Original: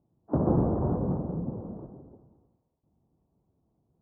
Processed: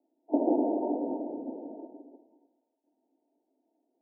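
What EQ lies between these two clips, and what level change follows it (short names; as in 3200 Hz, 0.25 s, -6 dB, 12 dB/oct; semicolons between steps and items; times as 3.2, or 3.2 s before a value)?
Chebyshev high-pass 280 Hz, order 5; rippled Chebyshev low-pass 940 Hz, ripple 9 dB; +7.5 dB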